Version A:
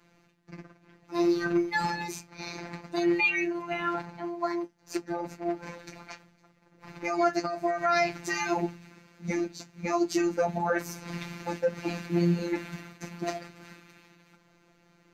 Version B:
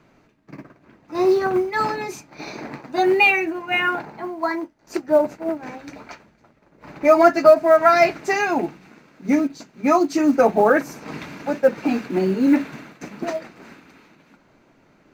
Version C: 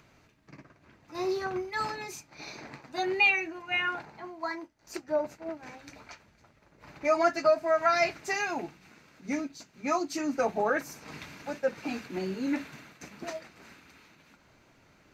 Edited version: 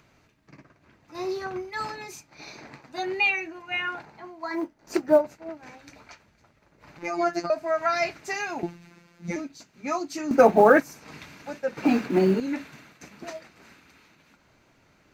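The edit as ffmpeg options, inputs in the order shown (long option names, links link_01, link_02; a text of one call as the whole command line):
ffmpeg -i take0.wav -i take1.wav -i take2.wav -filter_complex "[1:a]asplit=3[link_01][link_02][link_03];[0:a]asplit=2[link_04][link_05];[2:a]asplit=6[link_06][link_07][link_08][link_09][link_10][link_11];[link_06]atrim=end=4.6[link_12];[link_01]atrim=start=4.5:end=5.23[link_13];[link_07]atrim=start=5.13:end=6.982[link_14];[link_04]atrim=start=6.978:end=7.502[link_15];[link_08]atrim=start=7.498:end=8.632[link_16];[link_05]atrim=start=8.628:end=9.362[link_17];[link_09]atrim=start=9.358:end=10.312[link_18];[link_02]atrim=start=10.308:end=10.802[link_19];[link_10]atrim=start=10.798:end=11.772[link_20];[link_03]atrim=start=11.768:end=12.402[link_21];[link_11]atrim=start=12.398[link_22];[link_12][link_13]acrossfade=duration=0.1:curve1=tri:curve2=tri[link_23];[link_23][link_14]acrossfade=duration=0.1:curve1=tri:curve2=tri[link_24];[link_24][link_15]acrossfade=duration=0.004:curve1=hsin:curve2=hsin[link_25];[link_25][link_16]acrossfade=duration=0.004:curve1=hsin:curve2=hsin[link_26];[link_26][link_17]acrossfade=duration=0.004:curve1=hsin:curve2=hsin[link_27];[link_27][link_18]acrossfade=duration=0.004:curve1=hsin:curve2=hsin[link_28];[link_28][link_19]acrossfade=duration=0.004:curve1=hsin:curve2=hsin[link_29];[link_29][link_20]acrossfade=duration=0.004:curve1=hsin:curve2=hsin[link_30];[link_30][link_21]acrossfade=duration=0.004:curve1=hsin:curve2=hsin[link_31];[link_31][link_22]acrossfade=duration=0.004:curve1=hsin:curve2=hsin" out.wav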